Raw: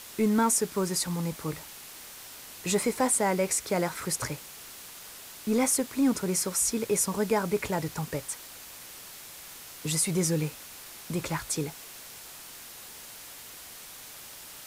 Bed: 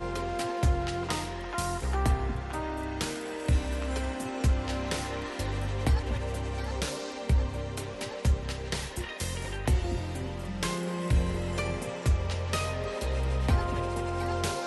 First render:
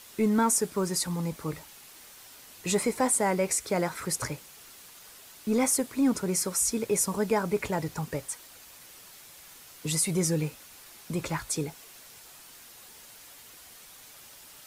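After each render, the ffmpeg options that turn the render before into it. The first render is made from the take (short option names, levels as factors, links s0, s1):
-af "afftdn=nr=6:nf=-46"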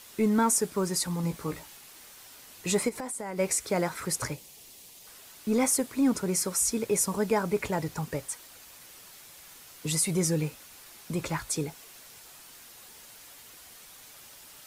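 -filter_complex "[0:a]asettb=1/sr,asplit=3[s0][s1][s2];[s0]atrim=end=1.224[s3];[s1]atrim=start=1.22:end=1.77,asetpts=PTS-STARTPTS,afade=t=in:d=0.004:c=qsin,afade=t=out:st=0.546:d=0.004:c=qsin,asplit=2[s4][s5];[s5]adelay=17,volume=0.473[s6];[s4][s6]amix=inputs=2:normalize=0,atrim=end_sample=24255[s7];[s2]atrim=start=1.766[s8];[s3][s7]acrossfade=d=0.004:c1=hsin:c2=qsin[s9];[s9][s8]acrossfade=d=0.004:c1=qsin:c2=hsin,asplit=3[s10][s11][s12];[s10]afade=t=out:st=2.88:d=0.02[s13];[s11]acompressor=threshold=0.0251:ratio=12:attack=3.2:release=140:knee=1:detection=peak,afade=t=in:st=2.88:d=0.02,afade=t=out:st=3.38:d=0.02[s14];[s12]afade=t=in:st=3.38:d=0.02[s15];[s13][s14][s15]amix=inputs=3:normalize=0,asettb=1/sr,asplit=3[s16][s17][s18];[s16]atrim=end=4.344[s19];[s17]atrim=start=4.34:end=5.07,asetpts=PTS-STARTPTS,afade=t=in:d=0.004:c=qsin,afade=t=out:st=0.726:d=0.004:c=qsin,equalizer=f=1400:t=o:w=0.82:g=-13.5[s20];[s18]atrim=start=5.066[s21];[s19][s20]acrossfade=d=0.004:c1=hsin:c2=qsin[s22];[s22][s21]acrossfade=d=0.004:c1=qsin:c2=hsin"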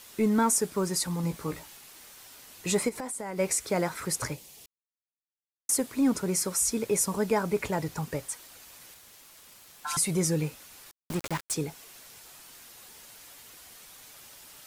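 -filter_complex "[0:a]asettb=1/sr,asplit=3[s0][s1][s2];[s0]atrim=end=8.944[s3];[s1]atrim=start=8.94:end=9.97,asetpts=PTS-STARTPTS,afade=t=in:d=0.004:c=qsin,afade=t=out:st=1.026:d=0.004:c=qsin,aeval=exprs='val(0)*sin(2*PI*1200*n/s)':c=same[s4];[s2]atrim=start=9.966[s5];[s3][s4]acrossfade=d=0.004:c1=hsin:c2=qsin[s6];[s6][s5]acrossfade=d=0.004:c1=qsin:c2=hsin,asettb=1/sr,asplit=3[s7][s8][s9];[s7]atrim=end=10.914[s10];[s8]atrim=start=10.91:end=11.54,asetpts=PTS-STARTPTS,afade=t=in:d=0.004:c=qsin,afade=t=out:st=0.626:d=0.004:c=qsin,aeval=exprs='val(0)*gte(abs(val(0)),0.0251)':c=same[s11];[s9]atrim=start=11.536[s12];[s10][s11]acrossfade=d=0.004:c1=hsin:c2=qsin[s13];[s13][s12]acrossfade=d=0.004:c1=qsin:c2=hsin,asplit=3[s14][s15][s16];[s14]atrim=end=4.66,asetpts=PTS-STARTPTS,afade=t=out:st=4.656:d=0.004:c=hsin[s17];[s15]atrim=start=4.66:end=5.69,asetpts=PTS-STARTPTS,volume=0[s18];[s16]atrim=start=5.69,asetpts=PTS-STARTPTS,afade=t=in:d=0.004:c=hsin[s19];[s17][s18][s19]concat=n=3:v=0:a=1"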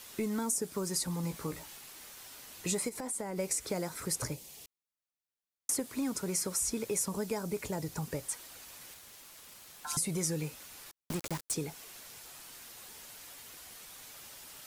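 -filter_complex "[0:a]acrossover=split=660|4300[s0][s1][s2];[s0]acompressor=threshold=0.02:ratio=4[s3];[s1]acompressor=threshold=0.00501:ratio=4[s4];[s2]acompressor=threshold=0.0282:ratio=4[s5];[s3][s4][s5]amix=inputs=3:normalize=0"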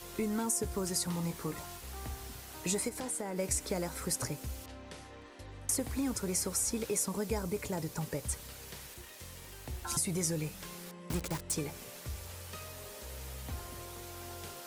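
-filter_complex "[1:a]volume=0.15[s0];[0:a][s0]amix=inputs=2:normalize=0"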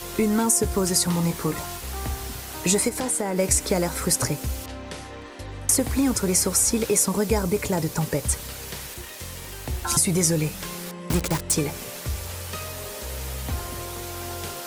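-af "volume=3.98"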